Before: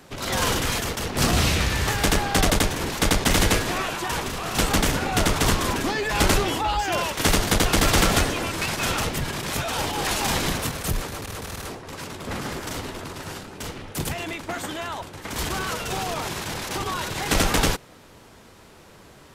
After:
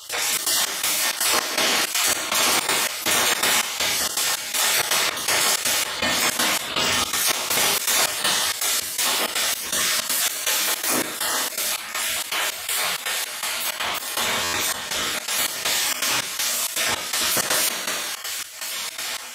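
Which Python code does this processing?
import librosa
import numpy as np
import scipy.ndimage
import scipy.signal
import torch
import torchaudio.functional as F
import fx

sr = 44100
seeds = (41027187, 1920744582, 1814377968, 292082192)

y = fx.spec_dropout(x, sr, seeds[0], share_pct=30)
y = fx.room_early_taps(y, sr, ms=(42, 58), db=(-13.0, -5.5))
y = fx.spec_gate(y, sr, threshold_db=-15, keep='weak')
y = fx.highpass(y, sr, hz=200.0, slope=6)
y = fx.rev_plate(y, sr, seeds[1], rt60_s=0.53, hf_ratio=0.95, predelay_ms=0, drr_db=-4.0)
y = fx.step_gate(y, sr, bpm=162, pattern='.xxx.xx.', floor_db=-24.0, edge_ms=4.5)
y = fx.peak_eq(y, sr, hz=5700.0, db=-6.5, octaves=0.45, at=(11.72, 13.87))
y = fx.buffer_glitch(y, sr, at_s=(14.43,), block=512, repeats=8)
y = fx.env_flatten(y, sr, amount_pct=70)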